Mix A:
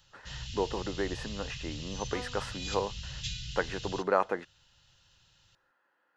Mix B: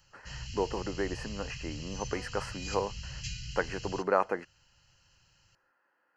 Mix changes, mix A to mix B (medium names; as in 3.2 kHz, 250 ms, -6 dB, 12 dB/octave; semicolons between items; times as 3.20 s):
second sound -9.0 dB; master: add Butterworth band-stop 3.6 kHz, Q 3.4